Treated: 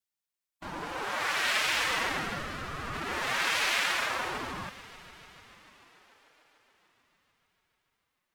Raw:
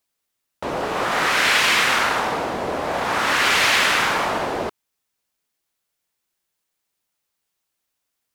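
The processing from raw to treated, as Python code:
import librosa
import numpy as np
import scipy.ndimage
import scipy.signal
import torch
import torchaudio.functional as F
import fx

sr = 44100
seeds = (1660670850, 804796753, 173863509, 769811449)

p1 = fx.low_shelf(x, sr, hz=350.0, db=-12.0)
p2 = p1 + fx.echo_heads(p1, sr, ms=147, heads='all three', feedback_pct=70, wet_db=-23.5, dry=0)
p3 = fx.pitch_keep_formants(p2, sr, semitones=9.5)
p4 = fx.ring_lfo(p3, sr, carrier_hz=400.0, swing_pct=60, hz=0.39)
y = p4 * librosa.db_to_amplitude(-6.5)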